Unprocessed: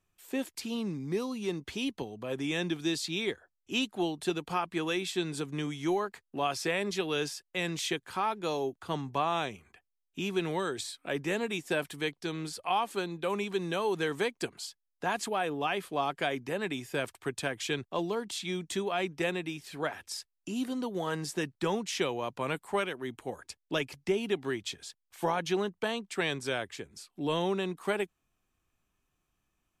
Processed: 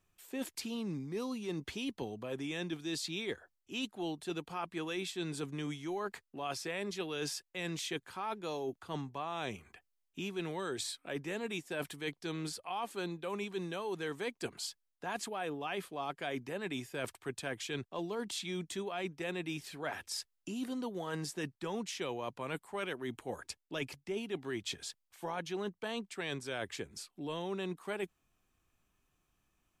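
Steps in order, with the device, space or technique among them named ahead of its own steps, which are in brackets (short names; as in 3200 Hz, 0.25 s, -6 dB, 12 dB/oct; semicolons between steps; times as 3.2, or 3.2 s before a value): compression on the reversed sound (reverse; compressor, threshold -37 dBFS, peak gain reduction 13 dB; reverse); gain +1.5 dB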